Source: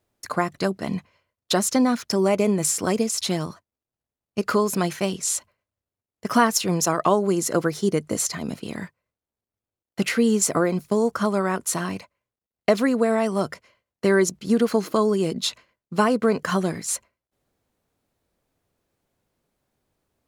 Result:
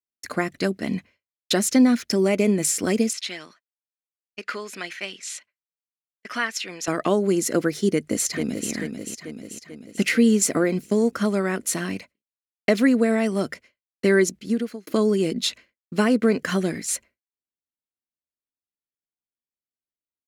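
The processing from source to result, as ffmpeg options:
-filter_complex "[0:a]asettb=1/sr,asplit=3[s0][s1][s2];[s0]atrim=end=3.134[s3];[s1]atrim=start=3.13:end=6.88,asetpts=PTS-STARTPTS,afade=t=in:d=0.004:c=qsin,afade=t=out:st=3.746:d=0.004:c=qsin,bandpass=f=2200:t=q:w=0.88[s4];[s2]atrim=start=6.876[s5];[s3][s4]acrossfade=d=0.004:c1=hsin:c2=qsin[s6];[s6][s5]acrossfade=d=0.004:c1=qsin:c2=hsin,asplit=2[s7][s8];[s8]afade=t=in:st=7.9:d=0.01,afade=t=out:st=8.7:d=0.01,aecho=0:1:440|880|1320|1760|2200|2640|3080|3520:0.473151|0.283891|0.170334|0.102201|0.0613204|0.0367922|0.0220753|0.0132452[s9];[s7][s9]amix=inputs=2:normalize=0,asplit=2[s10][s11];[s10]atrim=end=14.87,asetpts=PTS-STARTPTS,afade=t=out:st=14.19:d=0.68[s12];[s11]atrim=start=14.87,asetpts=PTS-STARTPTS,afade=t=in:d=0.004:c=hsin[s13];[s12][s13]concat=n=2:v=0:a=1,equalizer=f=140:w=1.3:g=-5.5,agate=range=0.0224:threshold=0.00631:ratio=3:detection=peak,equalizer=f=250:t=o:w=1:g=6,equalizer=f=1000:t=o:w=1:g=-10,equalizer=f=2000:t=o:w=1:g=6"

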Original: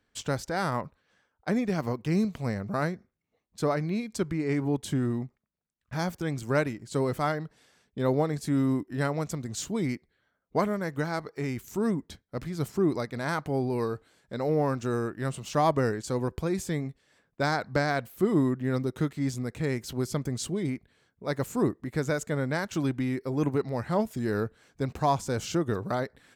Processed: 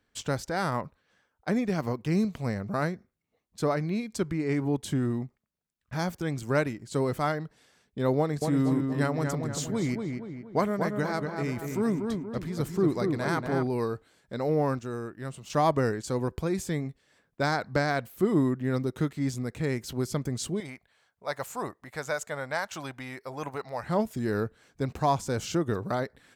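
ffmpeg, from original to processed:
-filter_complex "[0:a]asettb=1/sr,asplit=3[s0][s1][s2];[s0]atrim=end=8.184[s3];[s1]atrim=start=8.18:end=13.67,asetpts=PTS-STARTPTS,afade=t=in:d=0.004:c=qsin,afade=t=out:st=5.486:d=0.004:c=qsin,asplit=2[s4][s5];[s5]adelay=236,lowpass=f=2600:p=1,volume=0.596,asplit=2[s6][s7];[s7]adelay=236,lowpass=f=2600:p=1,volume=0.49,asplit=2[s8][s9];[s9]adelay=236,lowpass=f=2600:p=1,volume=0.49,asplit=2[s10][s11];[s11]adelay=236,lowpass=f=2600:p=1,volume=0.49,asplit=2[s12][s13];[s13]adelay=236,lowpass=f=2600:p=1,volume=0.49,asplit=2[s14][s15];[s15]adelay=236,lowpass=f=2600:p=1,volume=0.49[s16];[s4][s6][s8][s10][s12][s14][s16]amix=inputs=7:normalize=0,atrim=end_sample=242109[s17];[s2]atrim=start=13.666[s18];[s3][s17]acrossfade=d=0.004:c1=hsin:c2=qsin[s19];[s19][s18]acrossfade=d=0.004:c1=qsin:c2=hsin,asettb=1/sr,asplit=3[s20][s21][s22];[s20]atrim=end=20.604[s23];[s21]atrim=start=20.6:end=23.83,asetpts=PTS-STARTPTS,afade=t=in:d=0.004:c=qsin,afade=t=out:st=3.226:d=0.004:c=qsin,lowshelf=f=480:t=q:w=1.5:g=-11.5[s24];[s22]atrim=start=23.826[s25];[s23][s24]acrossfade=d=0.004:c1=hsin:c2=qsin[s26];[s26][s25]acrossfade=d=0.004:c1=qsin:c2=hsin,asplit=3[s27][s28][s29];[s27]atrim=end=14.792[s30];[s28]atrim=start=14.788:end=15.502,asetpts=PTS-STARTPTS,volume=0.501[s31];[s29]atrim=start=15.498[s32];[s30][s31]acrossfade=d=0.004:c1=hsin:c2=hsin[s33];[s33][s32]acrossfade=d=0.004:c1=hsin:c2=hsin"

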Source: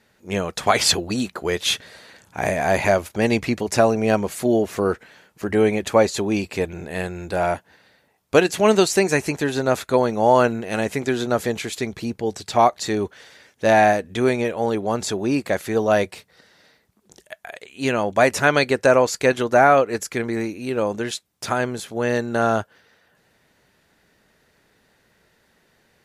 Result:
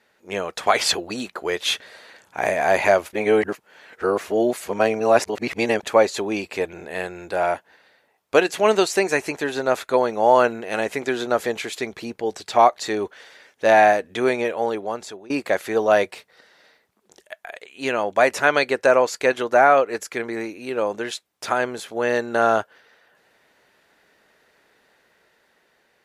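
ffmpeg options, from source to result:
-filter_complex "[0:a]asplit=4[s0][s1][s2][s3];[s0]atrim=end=3.132[s4];[s1]atrim=start=3.128:end=5.832,asetpts=PTS-STARTPTS,areverse[s5];[s2]atrim=start=5.828:end=15.3,asetpts=PTS-STARTPTS,afade=t=out:st=8.722:d=0.75:silence=0.0707946[s6];[s3]atrim=start=15.3,asetpts=PTS-STARTPTS,afade=t=in:d=0.004:c=hsin:silence=0.0707946[s7];[s4][s5]acrossfade=d=0.004:c1=hsin:c2=hsin[s8];[s6][s7]concat=n=2:v=0:a=1[s9];[s8][s9]acrossfade=d=0.004:c1=hsin:c2=hsin,bass=f=250:g=-14,treble=f=4000:g=-5,dynaudnorm=f=730:g=5:m=1.58"

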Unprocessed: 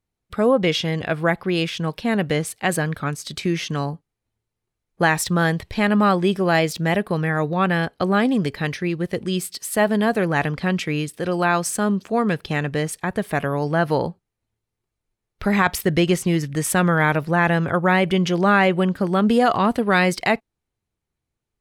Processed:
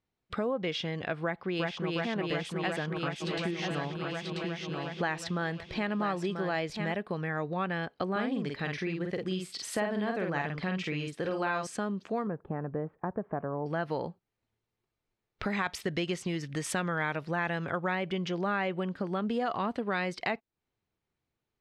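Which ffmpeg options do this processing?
-filter_complex "[0:a]asplit=2[s0][s1];[s1]afade=t=in:st=1.23:d=0.01,afade=t=out:st=1.95:d=0.01,aecho=0:1:360|720|1080|1440|1800|2160|2520|2880|3240|3600|3960|4320:0.944061|0.755249|0.604199|0.483359|0.386687|0.30935|0.24748|0.197984|0.158387|0.12671|0.101368|0.0810942[s2];[s0][s2]amix=inputs=2:normalize=0,asplit=3[s3][s4][s5];[s3]afade=t=out:st=3.2:d=0.02[s6];[s4]aecho=1:1:987:0.398,afade=t=in:st=3.2:d=0.02,afade=t=out:st=6.91:d=0.02[s7];[s5]afade=t=in:st=6.91:d=0.02[s8];[s6][s7][s8]amix=inputs=3:normalize=0,asettb=1/sr,asplit=3[s9][s10][s11];[s9]atrim=end=8.114[s12];[s10]atrim=start=8.11:end=11.67,asetpts=PTS-STARTPTS,afade=t=in:d=0.004:c=qsin,afade=t=out:st=3.556:d=0.004:c=qsin,asplit=2[s13][s14];[s14]adelay=48,volume=0.668[s15];[s13][s15]amix=inputs=2:normalize=0,atrim=end_sample=156996[s16];[s11]atrim=start=11.666[s17];[s12][s16]acrossfade=d=0.004:c1=hsin:c2=qsin[s18];[s18][s17]acrossfade=d=0.004:c1=qsin:c2=hsin,asettb=1/sr,asplit=3[s19][s20][s21];[s19]atrim=end=12.274[s22];[s20]atrim=start=12.27:end=13.66,asetpts=PTS-STARTPTS,afade=t=in:d=0.004:c=qsin,afade=t=out:st=1.386:d=0.004:c=qsin,lowpass=f=1200:w=0.5412,lowpass=f=1200:w=1.3066[s23];[s21]atrim=start=13.656[s24];[s22][s23]acrossfade=d=0.004:c1=hsin:c2=qsin[s25];[s25][s24]acrossfade=d=0.004:c1=qsin:c2=hsin,asettb=1/sr,asplit=3[s26][s27][s28];[s26]atrim=end=15.464[s29];[s27]atrim=start=15.46:end=17.95,asetpts=PTS-STARTPTS,afade=t=in:d=0.004:c=qsin,afade=t=out:st=2.486:d=0.004:c=qsin,highshelf=f=2600:g=7[s30];[s28]atrim=start=17.946[s31];[s29][s30]acrossfade=d=0.004:c1=hsin:c2=qsin[s32];[s32][s31]acrossfade=d=0.004:c1=qsin:c2=hsin,lowpass=4800,acompressor=threshold=0.0251:ratio=3,lowshelf=f=95:g=-10.5"

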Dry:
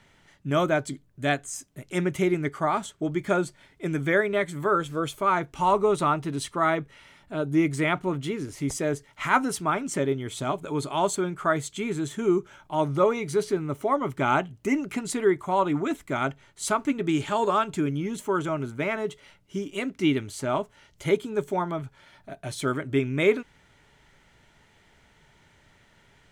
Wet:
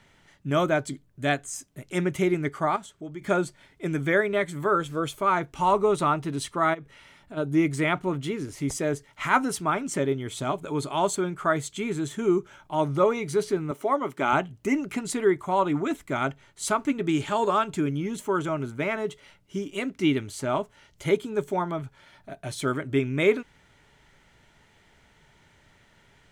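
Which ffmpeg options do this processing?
-filter_complex "[0:a]asettb=1/sr,asplit=3[s0][s1][s2];[s0]atrim=end=2.764[s3];[s1]atrim=start=2.76:end=3.22,asetpts=PTS-STARTPTS,afade=t=in:d=0.004:c=qsin,afade=t=out:st=0.456:d=0.004:c=qsin,acompressor=threshold=0.00251:ratio=1.5:attack=3.2:release=140:knee=1:detection=peak[s4];[s2]atrim=start=3.216[s5];[s3][s4]acrossfade=d=0.004:c1=hsin:c2=qsin[s6];[s6][s5]acrossfade=d=0.004:c1=qsin:c2=hsin,asplit=3[s7][s8][s9];[s7]afade=t=out:st=6.73:d=0.02[s10];[s8]acompressor=threshold=0.0158:ratio=8:attack=3.2:release=140:knee=1:detection=peak,afade=t=in:st=6.73:d=0.02,afade=t=out:st=7.36:d=0.02[s11];[s9]afade=t=in:st=7.36:d=0.02[s12];[s10][s11][s12]amix=inputs=3:normalize=0,asettb=1/sr,asplit=3[s13][s14][s15];[s13]atrim=end=13.714[s16];[s14]atrim=start=13.71:end=14.33,asetpts=PTS-STARTPTS,afade=t=in:d=0.004:c=qsin,afade=t=out:st=0.616:d=0.004:c=qsin,highpass=240[s17];[s15]atrim=start=14.326[s18];[s16][s17]acrossfade=d=0.004:c1=hsin:c2=qsin[s19];[s19][s18]acrossfade=d=0.004:c1=qsin:c2=hsin"

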